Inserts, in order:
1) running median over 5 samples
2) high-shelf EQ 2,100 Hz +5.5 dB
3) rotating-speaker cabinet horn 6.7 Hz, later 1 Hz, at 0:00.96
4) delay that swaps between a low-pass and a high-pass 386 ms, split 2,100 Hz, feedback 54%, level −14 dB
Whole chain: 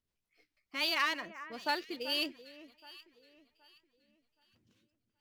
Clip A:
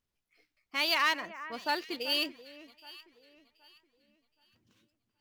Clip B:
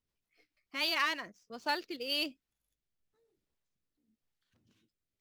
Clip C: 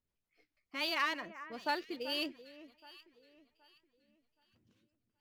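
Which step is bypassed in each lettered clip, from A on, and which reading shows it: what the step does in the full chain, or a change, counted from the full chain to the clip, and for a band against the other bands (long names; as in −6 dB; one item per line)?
3, 250 Hz band −2.0 dB
4, change in momentary loudness spread −11 LU
2, 8 kHz band −4.0 dB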